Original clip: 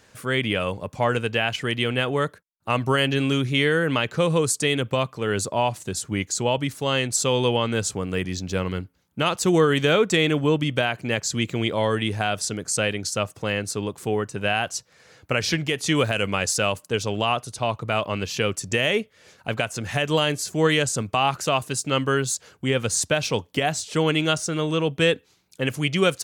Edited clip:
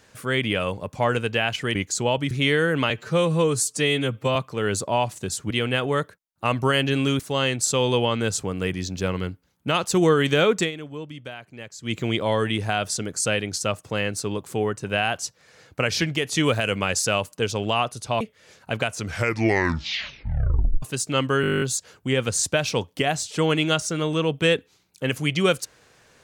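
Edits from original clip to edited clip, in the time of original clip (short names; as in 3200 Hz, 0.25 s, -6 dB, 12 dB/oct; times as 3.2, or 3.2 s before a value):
1.75–3.44 swap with 6.15–6.71
4.03–5 stretch 1.5×
10.11–11.46 dip -14.5 dB, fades 0.12 s
17.72–18.98 cut
19.66 tape stop 1.94 s
22.19 stutter 0.02 s, 11 plays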